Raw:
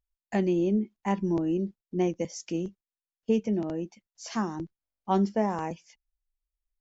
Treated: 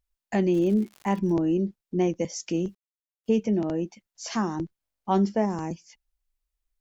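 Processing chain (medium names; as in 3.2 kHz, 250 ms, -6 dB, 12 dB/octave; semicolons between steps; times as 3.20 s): 5.45–5.91 s: time-frequency box 390–4100 Hz -8 dB; in parallel at -2.5 dB: peak limiter -25 dBFS, peak gain reduction 12.5 dB; 0.53–1.31 s: on the sum: crackle 210 per s -> 56 per s -37 dBFS; 2.53–3.40 s: word length cut 12-bit, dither none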